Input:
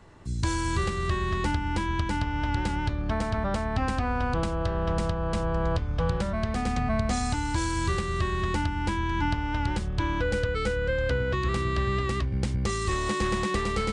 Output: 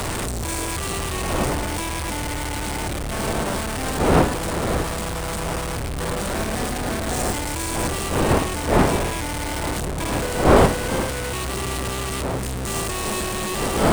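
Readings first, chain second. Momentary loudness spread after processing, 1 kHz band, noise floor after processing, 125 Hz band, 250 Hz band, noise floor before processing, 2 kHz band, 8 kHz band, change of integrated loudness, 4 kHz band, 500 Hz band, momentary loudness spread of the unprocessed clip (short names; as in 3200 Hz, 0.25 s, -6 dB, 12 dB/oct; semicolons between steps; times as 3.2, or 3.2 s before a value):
8 LU, +5.0 dB, -27 dBFS, +2.0 dB, +5.0 dB, -30 dBFS, +4.0 dB, +13.5 dB, +5.0 dB, +7.5 dB, +7.0 dB, 2 LU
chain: infinite clipping; wind noise 640 Hz -25 dBFS; bell 8800 Hz +9 dB 0.42 oct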